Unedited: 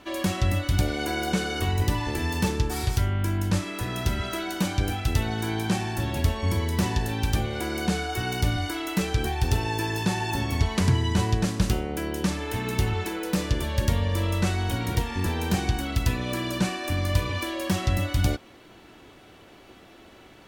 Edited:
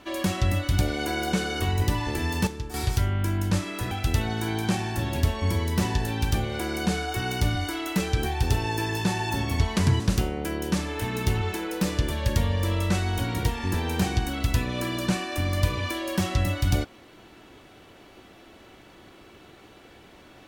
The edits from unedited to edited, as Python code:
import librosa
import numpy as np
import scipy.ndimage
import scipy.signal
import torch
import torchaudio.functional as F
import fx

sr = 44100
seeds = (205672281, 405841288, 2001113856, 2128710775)

y = fx.edit(x, sr, fx.clip_gain(start_s=2.47, length_s=0.27, db=-9.0),
    fx.cut(start_s=3.91, length_s=1.01),
    fx.cut(start_s=11.01, length_s=0.51), tone=tone)